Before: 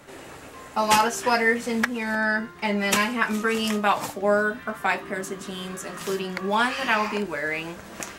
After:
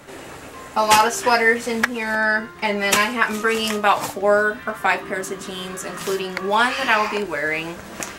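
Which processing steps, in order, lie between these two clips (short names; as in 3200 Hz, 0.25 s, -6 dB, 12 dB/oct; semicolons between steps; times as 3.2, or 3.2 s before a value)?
dynamic EQ 200 Hz, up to -7 dB, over -41 dBFS, Q 2.2; gain +5 dB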